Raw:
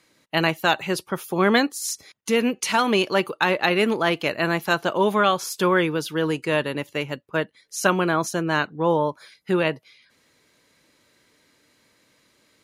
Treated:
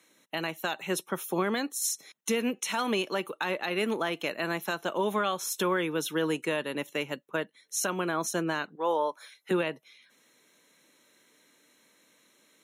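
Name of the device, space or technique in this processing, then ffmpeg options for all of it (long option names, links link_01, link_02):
PA system with an anti-feedback notch: -filter_complex "[0:a]asettb=1/sr,asplit=3[link_01][link_02][link_03];[link_01]atrim=end=8.754[link_04];[link_02]atrim=start=8.75:end=9.51,asetpts=PTS-STARTPTS,afade=type=in:duration=0.004:curve=qsin,afade=type=out:start_time=0.756:duration=0.004:curve=qsin,highpass=480[link_05];[link_03]atrim=start=9.506[link_06];[link_04][link_05]acrossfade=duration=0.004:curve1=hsin:curve2=qsin[link_07];[link_07][link_06]acrossfade=duration=0.004:curve1=qsin:curve2=hsin,highpass=frequency=170:width=0.5412,highpass=frequency=170:width=1.3066,asuperstop=centerf=4700:order=12:qfactor=5.9,highshelf=frequency=6000:gain=6,alimiter=limit=-15dB:level=0:latency=1:release=311,volume=-3dB"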